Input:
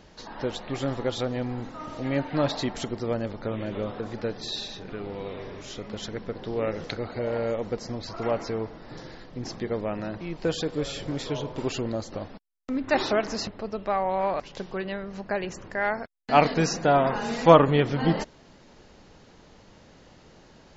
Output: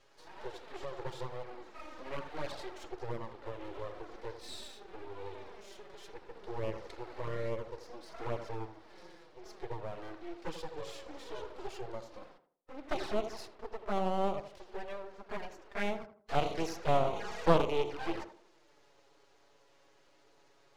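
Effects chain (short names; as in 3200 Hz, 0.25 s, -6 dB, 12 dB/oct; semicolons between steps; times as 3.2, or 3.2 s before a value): rattling part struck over -23 dBFS, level -22 dBFS; elliptic high-pass 330 Hz; harmonic-percussive split percussive -11 dB; half-wave rectifier; envelope flanger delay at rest 7.8 ms, full sweep at -26.5 dBFS; on a send: tape echo 82 ms, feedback 40%, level -8.5 dB, low-pass 1200 Hz; on the sum: Doppler distortion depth 0.47 ms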